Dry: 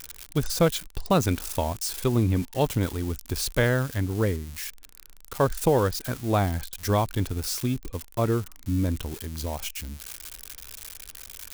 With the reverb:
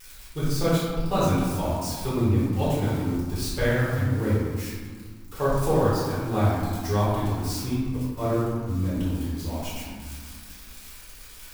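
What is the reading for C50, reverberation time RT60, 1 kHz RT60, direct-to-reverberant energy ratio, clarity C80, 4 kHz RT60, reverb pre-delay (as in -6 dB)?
-2.0 dB, 1.8 s, 1.8 s, -10.5 dB, 1.0 dB, 0.85 s, 5 ms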